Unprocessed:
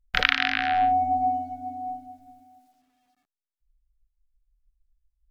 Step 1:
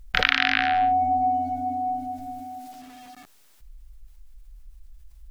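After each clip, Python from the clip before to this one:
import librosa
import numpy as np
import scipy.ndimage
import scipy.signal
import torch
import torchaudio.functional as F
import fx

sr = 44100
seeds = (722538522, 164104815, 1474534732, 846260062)

y = fx.env_flatten(x, sr, amount_pct=50)
y = y * 10.0 ** (-1.0 / 20.0)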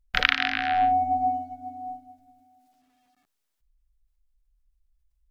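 y = fx.upward_expand(x, sr, threshold_db=-35.0, expansion=2.5)
y = y * 10.0 ** (3.5 / 20.0)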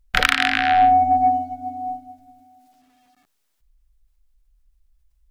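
y = 10.0 ** (-12.0 / 20.0) * np.tanh(x / 10.0 ** (-12.0 / 20.0))
y = y * 10.0 ** (8.0 / 20.0)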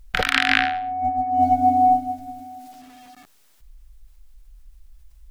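y = fx.over_compress(x, sr, threshold_db=-27.0, ratio=-1.0)
y = y * 10.0 ** (6.5 / 20.0)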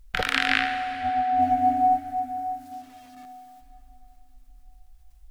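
y = fx.rev_plate(x, sr, seeds[0], rt60_s=3.8, hf_ratio=0.75, predelay_ms=0, drr_db=8.0)
y = y * 10.0 ** (-4.5 / 20.0)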